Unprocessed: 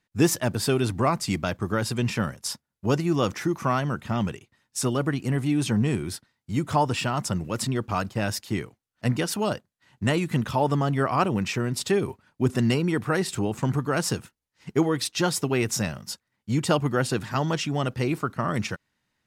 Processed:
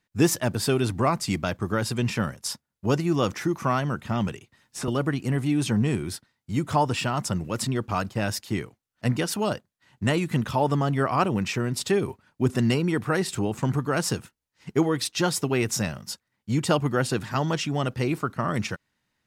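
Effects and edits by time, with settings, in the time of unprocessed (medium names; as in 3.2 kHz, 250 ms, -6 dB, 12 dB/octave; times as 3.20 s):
4.28–4.88 s: three bands compressed up and down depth 70%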